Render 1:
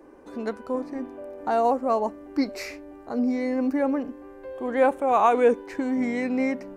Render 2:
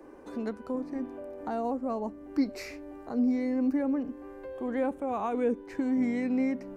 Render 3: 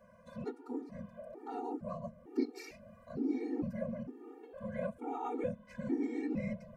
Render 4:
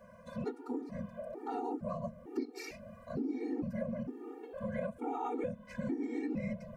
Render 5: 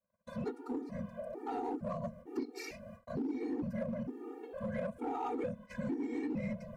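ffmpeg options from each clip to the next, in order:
ffmpeg -i in.wav -filter_complex "[0:a]acrossover=split=310[link_01][link_02];[link_02]acompressor=threshold=-43dB:ratio=2[link_03];[link_01][link_03]amix=inputs=2:normalize=0" out.wav
ffmpeg -i in.wav -af "afftfilt=real='hypot(re,im)*cos(2*PI*random(0))':imag='hypot(re,im)*sin(2*PI*random(1))':win_size=512:overlap=0.75,afftfilt=real='re*gt(sin(2*PI*1.1*pts/sr)*(1-2*mod(floor(b*sr/1024/240),2)),0)':imag='im*gt(sin(2*PI*1.1*pts/sr)*(1-2*mod(floor(b*sr/1024/240),2)),0)':win_size=1024:overlap=0.75,volume=1dB" out.wav
ffmpeg -i in.wav -af "acompressor=threshold=-38dB:ratio=6,volume=5dB" out.wav
ffmpeg -i in.wav -filter_complex "[0:a]agate=range=-36dB:threshold=-51dB:ratio=16:detection=peak,asplit=2[link_01][link_02];[link_02]aeval=exprs='0.0188*(abs(mod(val(0)/0.0188+3,4)-2)-1)':channel_layout=same,volume=-11.5dB[link_03];[link_01][link_03]amix=inputs=2:normalize=0,volume=-1.5dB" out.wav

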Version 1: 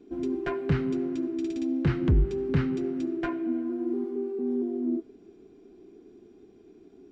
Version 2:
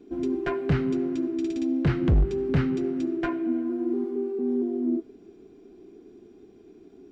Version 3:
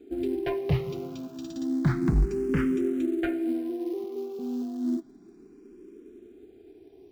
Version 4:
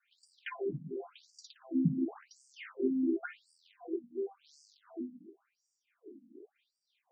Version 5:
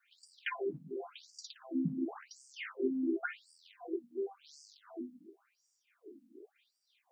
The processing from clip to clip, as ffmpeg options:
ffmpeg -i in.wav -af "asoftclip=type=hard:threshold=-18dB,volume=2.5dB" out.wav
ffmpeg -i in.wav -filter_complex "[0:a]asplit=2[link_01][link_02];[link_02]acrusher=bits=5:mode=log:mix=0:aa=0.000001,volume=-5.5dB[link_03];[link_01][link_03]amix=inputs=2:normalize=0,asplit=2[link_04][link_05];[link_05]afreqshift=0.31[link_06];[link_04][link_06]amix=inputs=2:normalize=1,volume=-2.5dB" out.wav
ffmpeg -i in.wav -af "bandreject=frequency=50:width_type=h:width=6,bandreject=frequency=100:width_type=h:width=6,bandreject=frequency=150:width_type=h:width=6,bandreject=frequency=200:width_type=h:width=6,bandreject=frequency=250:width_type=h:width=6,bandreject=frequency=300:width_type=h:width=6,bandreject=frequency=350:width_type=h:width=6,afftfilt=real='re*between(b*sr/1024,200*pow(6600/200,0.5+0.5*sin(2*PI*0.92*pts/sr))/1.41,200*pow(6600/200,0.5+0.5*sin(2*PI*0.92*pts/sr))*1.41)':imag='im*between(b*sr/1024,200*pow(6600/200,0.5+0.5*sin(2*PI*0.92*pts/sr))/1.41,200*pow(6600/200,0.5+0.5*sin(2*PI*0.92*pts/sr))*1.41)':win_size=1024:overlap=0.75" out.wav
ffmpeg -i in.wav -af "highpass=frequency=650:poles=1,volume=5dB" out.wav

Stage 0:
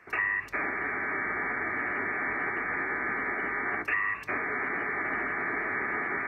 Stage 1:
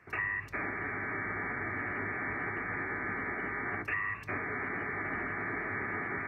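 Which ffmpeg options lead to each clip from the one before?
ffmpeg -i in.wav -af "equalizer=frequency=98:width_type=o:width=1.9:gain=13.5,volume=-5.5dB" out.wav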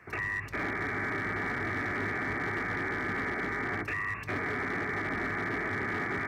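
ffmpeg -i in.wav -filter_complex "[0:a]acrossover=split=570[link_01][link_02];[link_02]alimiter=level_in=7.5dB:limit=-24dB:level=0:latency=1:release=64,volume=-7.5dB[link_03];[link_01][link_03]amix=inputs=2:normalize=0,asoftclip=type=hard:threshold=-32.5dB,volume=5.5dB" out.wav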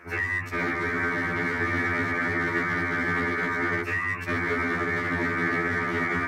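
ffmpeg -i in.wav -af "afftfilt=real='re*2*eq(mod(b,4),0)':imag='im*2*eq(mod(b,4),0)':win_size=2048:overlap=0.75,volume=8.5dB" out.wav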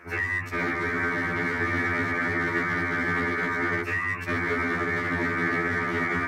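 ffmpeg -i in.wav -af anull out.wav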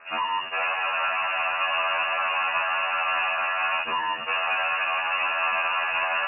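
ffmpeg -i in.wav -filter_complex "[0:a]asplit=2[link_01][link_02];[link_02]acrusher=bits=4:dc=4:mix=0:aa=0.000001,volume=-10dB[link_03];[link_01][link_03]amix=inputs=2:normalize=0,asoftclip=type=hard:threshold=-18dB,lowpass=frequency=2500:width_type=q:width=0.5098,lowpass=frequency=2500:width_type=q:width=0.6013,lowpass=frequency=2500:width_type=q:width=0.9,lowpass=frequency=2500:width_type=q:width=2.563,afreqshift=-2900" out.wav

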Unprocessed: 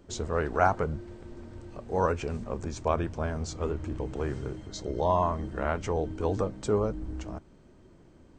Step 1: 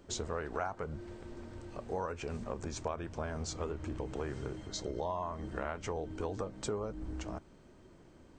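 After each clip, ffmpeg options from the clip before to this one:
ffmpeg -i in.wav -af "lowshelf=frequency=410:gain=-5,acompressor=threshold=-35dB:ratio=5,volume=1dB" out.wav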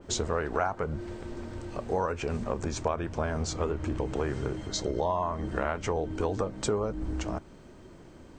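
ffmpeg -i in.wav -af "adynamicequalizer=threshold=0.002:dfrequency=3100:dqfactor=0.7:tfrequency=3100:tqfactor=0.7:attack=5:release=100:ratio=0.375:range=2:mode=cutabove:tftype=highshelf,volume=8dB" out.wav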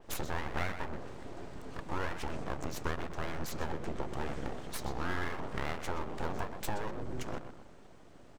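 ffmpeg -i in.wav -filter_complex "[0:a]asplit=2[link_01][link_02];[link_02]adelay=124,lowpass=frequency=2300:poles=1,volume=-9dB,asplit=2[link_03][link_04];[link_04]adelay=124,lowpass=frequency=2300:poles=1,volume=0.47,asplit=2[link_05][link_06];[link_06]adelay=124,lowpass=frequency=2300:poles=1,volume=0.47,asplit=2[link_07][link_08];[link_08]adelay=124,lowpass=frequency=2300:poles=1,volume=0.47,asplit=2[link_09][link_10];[link_10]adelay=124,lowpass=frequency=2300:poles=1,volume=0.47[link_11];[link_01][link_03][link_05][link_07][link_09][link_11]amix=inputs=6:normalize=0,aeval=exprs='abs(val(0))':channel_layout=same,volume=-4.5dB" out.wav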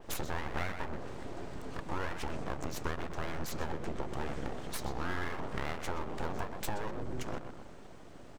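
ffmpeg -i in.wav -af "acompressor=threshold=-43dB:ratio=1.5,volume=4.5dB" out.wav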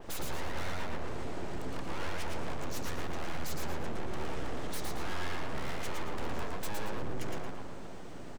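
ffmpeg -i in.wav -filter_complex "[0:a]asoftclip=type=tanh:threshold=-34dB,asplit=2[link_01][link_02];[link_02]aecho=0:1:113|226|339|452:0.668|0.201|0.0602|0.018[link_03];[link_01][link_03]amix=inputs=2:normalize=0,volume=4.5dB" out.wav

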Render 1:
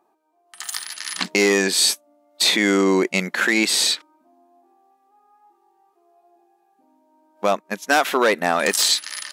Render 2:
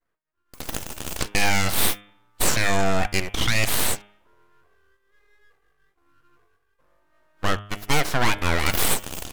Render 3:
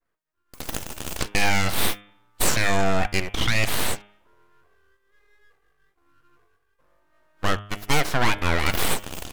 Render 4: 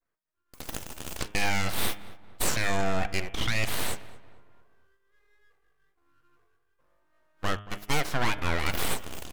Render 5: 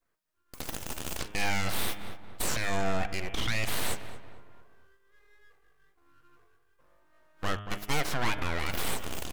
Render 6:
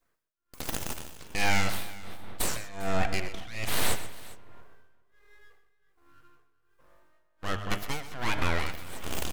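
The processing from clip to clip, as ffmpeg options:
ffmpeg -i in.wav -af "agate=range=-33dB:threshold=-57dB:ratio=3:detection=peak,aeval=exprs='abs(val(0))':channel_layout=same,bandreject=frequency=102.4:width_type=h:width=4,bandreject=frequency=204.8:width_type=h:width=4,bandreject=frequency=307.2:width_type=h:width=4,bandreject=frequency=409.6:width_type=h:width=4,bandreject=frequency=512:width_type=h:width=4,bandreject=frequency=614.4:width_type=h:width=4,bandreject=frequency=716.8:width_type=h:width=4,bandreject=frequency=819.2:width_type=h:width=4,bandreject=frequency=921.6:width_type=h:width=4,bandreject=frequency=1024:width_type=h:width=4,bandreject=frequency=1126.4:width_type=h:width=4,bandreject=frequency=1228.8:width_type=h:width=4,bandreject=frequency=1331.2:width_type=h:width=4,bandreject=frequency=1433.6:width_type=h:width=4,bandreject=frequency=1536:width_type=h:width=4,bandreject=frequency=1638.4:width_type=h:width=4,bandreject=frequency=1740.8:width_type=h:width=4,bandreject=frequency=1843.2:width_type=h:width=4,bandreject=frequency=1945.6:width_type=h:width=4,bandreject=frequency=2048:width_type=h:width=4,bandreject=frequency=2150.4:width_type=h:width=4,bandreject=frequency=2252.8:width_type=h:width=4,bandreject=frequency=2355.2:width_type=h:width=4,bandreject=frequency=2457.6:width_type=h:width=4,bandreject=frequency=2560:width_type=h:width=4,bandreject=frequency=2662.4:width_type=h:width=4,bandreject=frequency=2764.8:width_type=h:width=4,bandreject=frequency=2867.2:width_type=h:width=4,bandreject=frequency=2969.6:width_type=h:width=4,bandreject=frequency=3072:width_type=h:width=4,bandreject=frequency=3174.4:width_type=h:width=4,bandreject=frequency=3276.8:width_type=h:width=4,bandreject=frequency=3379.2:width_type=h:width=4,bandreject=frequency=3481.6:width_type=h:width=4,bandreject=frequency=3584:width_type=h:width=4" out.wav
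ffmpeg -i in.wav -af "adynamicequalizer=threshold=0.0112:dfrequency=4900:dqfactor=0.7:tfrequency=4900:tqfactor=0.7:attack=5:release=100:ratio=0.375:range=3:mode=cutabove:tftype=highshelf" out.wav
ffmpeg -i in.wav -filter_complex "[0:a]asplit=2[link_01][link_02];[link_02]adelay=228,lowpass=frequency=2100:poles=1,volume=-16.5dB,asplit=2[link_03][link_04];[link_04]adelay=228,lowpass=frequency=2100:poles=1,volume=0.45,asplit=2[link_05][link_06];[link_06]adelay=228,lowpass=frequency=2100:poles=1,volume=0.45,asplit=2[link_07][link_08];[link_08]adelay=228,lowpass=frequency=2100:poles=1,volume=0.45[link_09];[link_01][link_03][link_05][link_07][link_09]amix=inputs=5:normalize=0,volume=-6dB" out.wav
ffmpeg -i in.wav -af "alimiter=limit=-22.5dB:level=0:latency=1:release=139,volume=5dB" out.wav
ffmpeg -i in.wav -af "tremolo=f=1.3:d=0.92,aecho=1:1:127|402:0.211|0.106,volume=4.5dB" out.wav

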